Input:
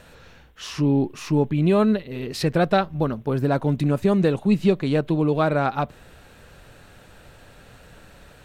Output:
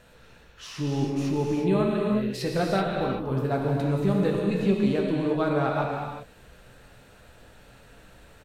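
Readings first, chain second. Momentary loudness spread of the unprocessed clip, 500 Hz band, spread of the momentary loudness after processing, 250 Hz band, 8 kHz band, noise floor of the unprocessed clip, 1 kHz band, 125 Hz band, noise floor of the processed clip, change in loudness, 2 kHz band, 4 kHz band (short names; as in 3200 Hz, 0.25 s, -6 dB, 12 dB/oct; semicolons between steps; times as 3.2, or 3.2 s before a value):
6 LU, -3.5 dB, 7 LU, -4.0 dB, n/a, -50 dBFS, -4.0 dB, -4.5 dB, -53 dBFS, -4.0 dB, -4.0 dB, -4.0 dB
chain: doubler 16 ms -11 dB; non-linear reverb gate 0.41 s flat, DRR -1 dB; gain -7.5 dB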